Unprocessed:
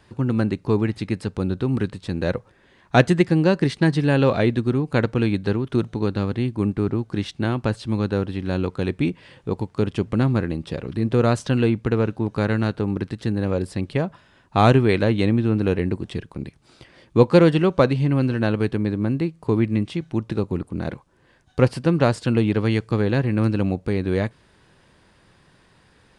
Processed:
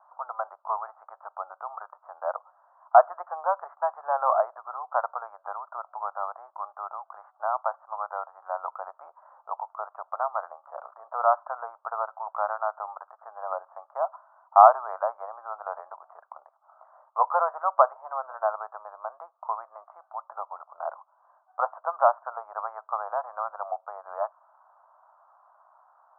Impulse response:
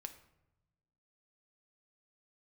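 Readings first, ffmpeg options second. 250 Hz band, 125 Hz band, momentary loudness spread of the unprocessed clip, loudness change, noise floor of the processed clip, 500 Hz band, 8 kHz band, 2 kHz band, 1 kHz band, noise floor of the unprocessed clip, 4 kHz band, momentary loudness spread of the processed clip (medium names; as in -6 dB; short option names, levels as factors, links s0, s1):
under -40 dB, under -40 dB, 9 LU, -6.5 dB, -67 dBFS, -7.5 dB, no reading, -12.5 dB, +5.5 dB, -57 dBFS, under -40 dB, 17 LU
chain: -af "asuperpass=centerf=920:order=12:qfactor=1.3,volume=2"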